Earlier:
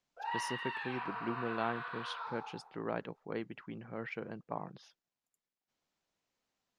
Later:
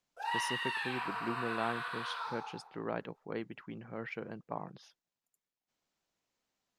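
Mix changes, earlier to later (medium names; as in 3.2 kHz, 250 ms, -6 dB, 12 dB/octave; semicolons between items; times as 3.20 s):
background: remove tape spacing loss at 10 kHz 22 dB; master: add treble shelf 12 kHz +11.5 dB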